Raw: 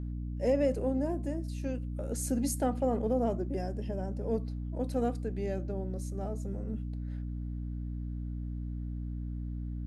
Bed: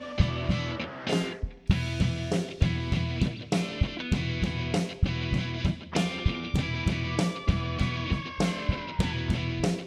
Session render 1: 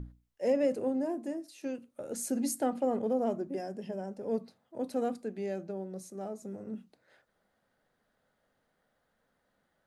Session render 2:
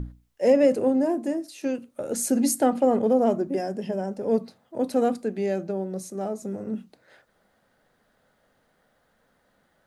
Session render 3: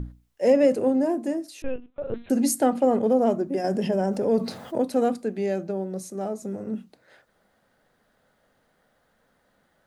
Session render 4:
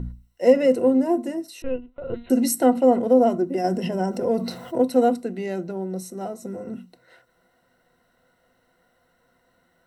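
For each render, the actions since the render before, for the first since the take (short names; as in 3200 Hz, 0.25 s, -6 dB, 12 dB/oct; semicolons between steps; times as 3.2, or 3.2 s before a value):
notches 60/120/180/240/300 Hz
gain +9.5 dB
1.62–2.3 LPC vocoder at 8 kHz pitch kept; 3.64–4.82 fast leveller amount 50%
ripple EQ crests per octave 2, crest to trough 12 dB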